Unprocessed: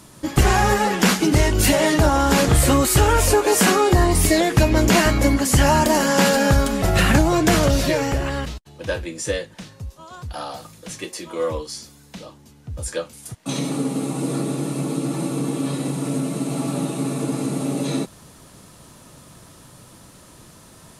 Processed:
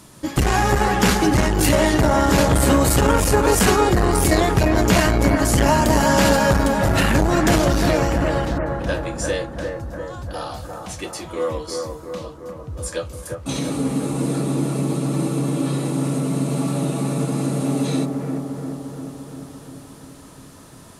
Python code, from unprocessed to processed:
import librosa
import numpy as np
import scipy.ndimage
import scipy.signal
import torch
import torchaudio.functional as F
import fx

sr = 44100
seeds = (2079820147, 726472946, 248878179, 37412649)

y = fx.echo_bbd(x, sr, ms=348, stages=4096, feedback_pct=66, wet_db=-4.5)
y = fx.transformer_sat(y, sr, knee_hz=290.0)